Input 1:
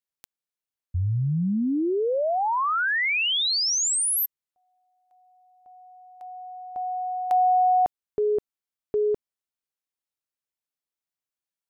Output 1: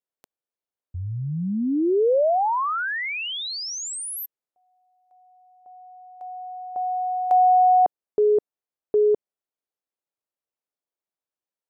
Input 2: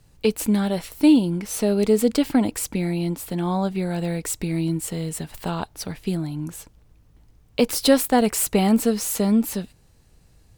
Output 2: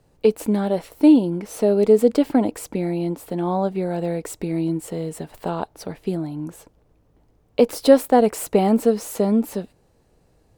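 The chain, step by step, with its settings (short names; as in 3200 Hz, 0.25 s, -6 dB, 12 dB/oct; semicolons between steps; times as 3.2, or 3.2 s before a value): bell 510 Hz +13.5 dB 2.7 oct; gain -8 dB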